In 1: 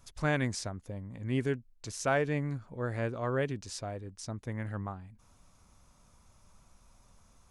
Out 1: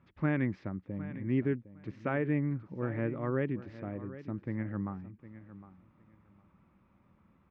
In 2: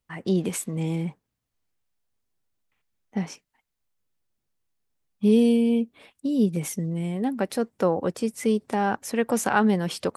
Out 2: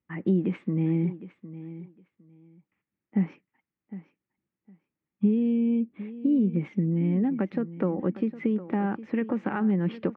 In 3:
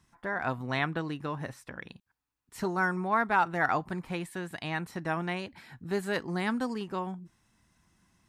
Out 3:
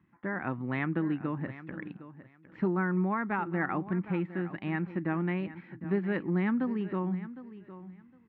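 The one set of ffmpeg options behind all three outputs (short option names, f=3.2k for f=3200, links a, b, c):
-filter_complex "[0:a]acompressor=threshold=-24dB:ratio=6,highpass=100,equalizer=f=190:t=q:w=4:g=6,equalizer=f=320:t=q:w=4:g=7,equalizer=f=460:t=q:w=4:g=-4,equalizer=f=690:t=q:w=4:g=-9,equalizer=f=1k:t=q:w=4:g=-5,equalizer=f=1.5k:t=q:w=4:g=-5,lowpass=f=2.2k:w=0.5412,lowpass=f=2.2k:w=1.3066,asplit=2[a][b];[b]aecho=0:1:759|1518:0.178|0.032[c];[a][c]amix=inputs=2:normalize=0,volume=1dB"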